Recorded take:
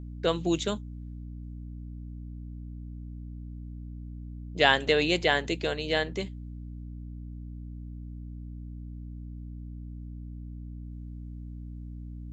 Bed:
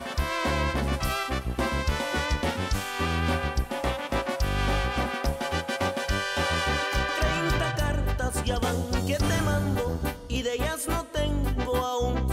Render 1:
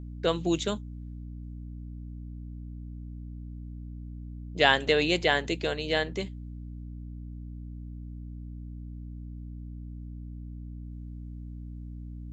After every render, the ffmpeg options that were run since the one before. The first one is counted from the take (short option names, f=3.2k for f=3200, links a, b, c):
-af anull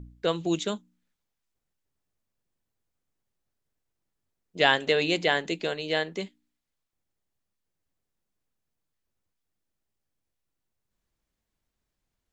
-af "bandreject=f=60:t=h:w=4,bandreject=f=120:t=h:w=4,bandreject=f=180:t=h:w=4,bandreject=f=240:t=h:w=4,bandreject=f=300:t=h:w=4"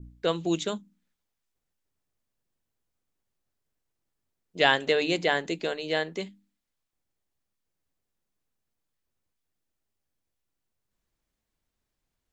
-af "bandreject=f=50:t=h:w=6,bandreject=f=100:t=h:w=6,bandreject=f=150:t=h:w=6,bandreject=f=200:t=h:w=6,adynamicequalizer=threshold=0.0112:dfrequency=3000:dqfactor=1.3:tfrequency=3000:tqfactor=1.3:attack=5:release=100:ratio=0.375:range=2:mode=cutabove:tftype=bell"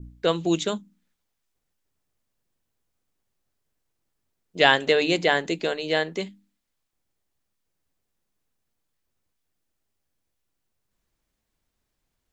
-af "volume=4dB"